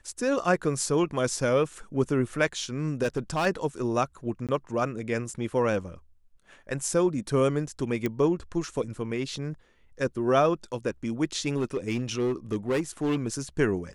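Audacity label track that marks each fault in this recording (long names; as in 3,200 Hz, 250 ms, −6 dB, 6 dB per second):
3.020000	3.470000	clipping −21.5 dBFS
4.470000	4.490000	drop-out 17 ms
8.060000	8.060000	click −15 dBFS
11.560000	13.340000	clipping −22 dBFS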